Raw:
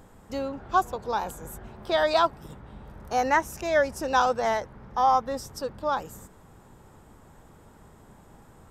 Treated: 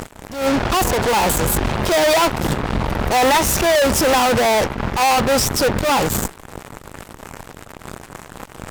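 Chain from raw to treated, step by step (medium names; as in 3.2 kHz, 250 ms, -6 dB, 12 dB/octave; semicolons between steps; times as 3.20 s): fuzz box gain 41 dB, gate -50 dBFS; Chebyshev shaper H 6 -13 dB, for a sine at -10 dBFS; attacks held to a fixed rise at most 110 dB/s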